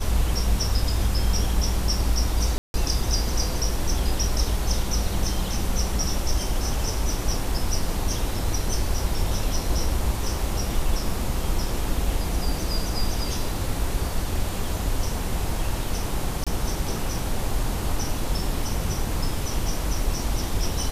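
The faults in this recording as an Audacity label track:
2.580000	2.740000	gap 0.161 s
16.440000	16.470000	gap 26 ms

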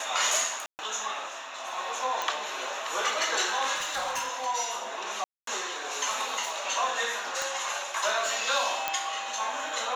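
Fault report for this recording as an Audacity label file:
0.660000	0.790000	gap 0.129 s
2.220000	2.220000	pop
3.750000	4.460000	clipped -27 dBFS
5.240000	5.470000	gap 0.233 s
7.420000	7.420000	pop
8.880000	8.880000	pop -10 dBFS

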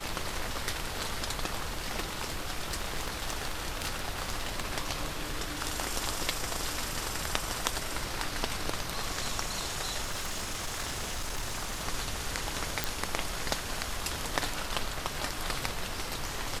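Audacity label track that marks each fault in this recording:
1.780000	4.640000	clipped -25.5 dBFS
10.030000	11.870000	clipped -29.5 dBFS
12.840000	12.840000	pop

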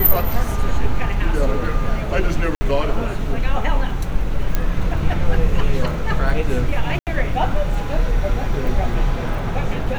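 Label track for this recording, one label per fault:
2.550000	2.610000	gap 60 ms
4.550000	4.550000	pop -5 dBFS
6.990000	7.070000	gap 78 ms

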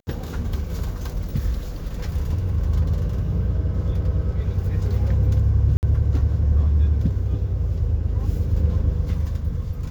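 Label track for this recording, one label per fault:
5.770000	5.830000	gap 59 ms

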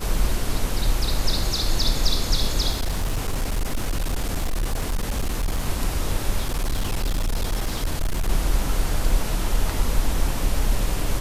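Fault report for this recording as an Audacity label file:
2.710000	5.670000	clipped -19.5 dBFS
6.400000	8.290000	clipped -19 dBFS

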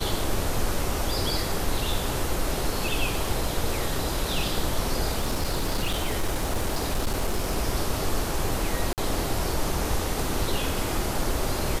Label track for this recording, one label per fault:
5.200000	7.580000	clipped -20.5 dBFS
8.930000	8.980000	gap 48 ms

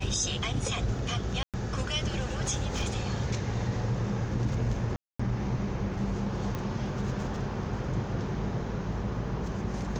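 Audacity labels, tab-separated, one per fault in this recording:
1.430000	1.540000	gap 0.107 s
4.960000	5.200000	gap 0.235 s
6.550000	6.550000	pop -20 dBFS

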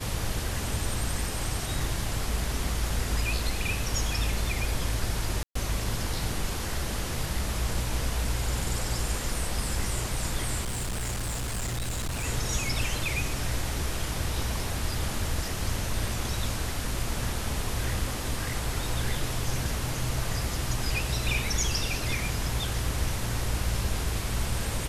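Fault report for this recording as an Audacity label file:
5.430000	5.550000	gap 0.124 s
10.630000	12.250000	clipped -27.5 dBFS

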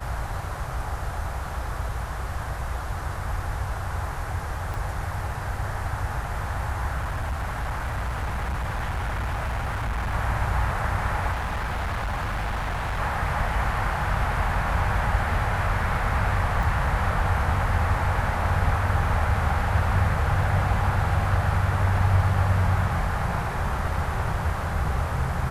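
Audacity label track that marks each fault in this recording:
4.740000	4.740000	pop
6.970000	10.140000	clipped -24 dBFS
11.320000	13.000000	clipped -24.5 dBFS
16.630000	16.630000	gap 3.3 ms

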